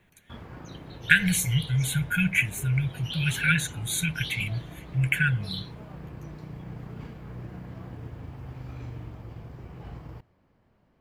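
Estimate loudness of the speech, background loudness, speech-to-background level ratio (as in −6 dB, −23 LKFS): −25.5 LKFS, −42.5 LKFS, 17.0 dB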